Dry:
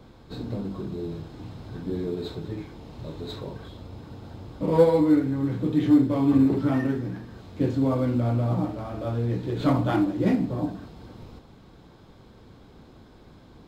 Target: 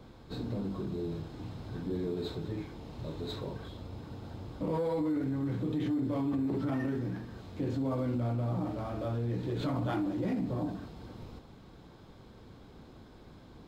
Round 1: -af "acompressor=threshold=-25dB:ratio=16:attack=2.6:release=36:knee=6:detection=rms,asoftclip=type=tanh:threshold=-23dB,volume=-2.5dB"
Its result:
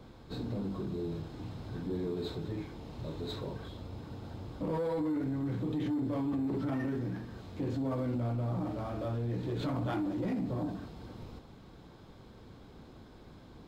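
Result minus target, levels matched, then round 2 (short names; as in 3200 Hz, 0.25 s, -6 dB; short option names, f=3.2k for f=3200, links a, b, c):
soft clip: distortion +20 dB
-af "acompressor=threshold=-25dB:ratio=16:attack=2.6:release=36:knee=6:detection=rms,asoftclip=type=tanh:threshold=-12dB,volume=-2.5dB"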